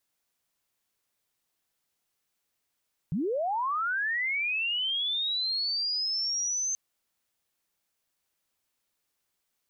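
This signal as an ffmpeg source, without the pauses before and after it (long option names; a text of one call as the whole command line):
ffmpeg -f lavfi -i "aevalsrc='pow(10,(-26-1*t/3.63)/20)*sin(2*PI*(140*t+6160*t*t/(2*3.63)))':duration=3.63:sample_rate=44100" out.wav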